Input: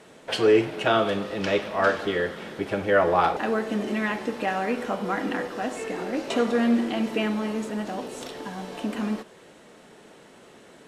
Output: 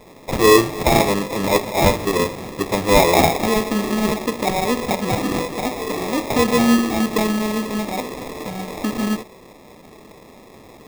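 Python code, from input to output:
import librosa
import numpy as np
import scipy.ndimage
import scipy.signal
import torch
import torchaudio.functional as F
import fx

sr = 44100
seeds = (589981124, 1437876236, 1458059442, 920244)

y = fx.sample_hold(x, sr, seeds[0], rate_hz=1500.0, jitter_pct=0)
y = y * 10.0 ** (6.5 / 20.0)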